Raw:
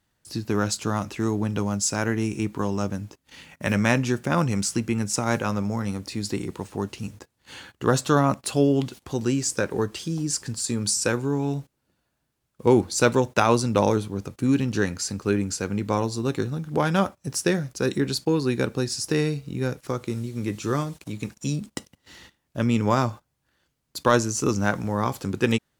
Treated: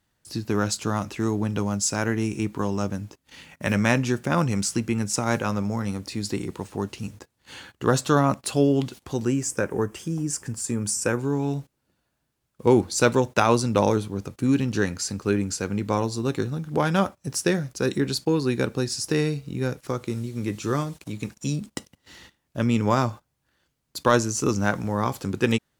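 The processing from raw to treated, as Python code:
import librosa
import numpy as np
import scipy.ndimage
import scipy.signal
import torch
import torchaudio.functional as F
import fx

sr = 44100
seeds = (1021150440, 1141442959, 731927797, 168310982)

y = fx.peak_eq(x, sr, hz=4100.0, db=-14.5, octaves=0.63, at=(9.25, 11.19))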